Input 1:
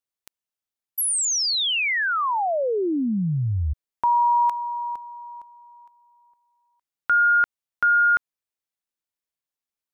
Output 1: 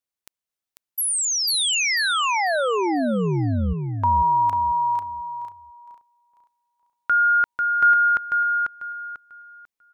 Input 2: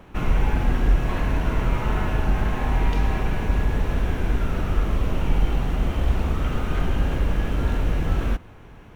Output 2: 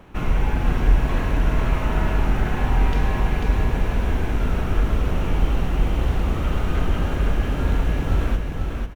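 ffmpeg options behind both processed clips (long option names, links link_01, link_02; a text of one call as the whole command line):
ffmpeg -i in.wav -af "aecho=1:1:494|988|1482|1976:0.631|0.164|0.0427|0.0111" out.wav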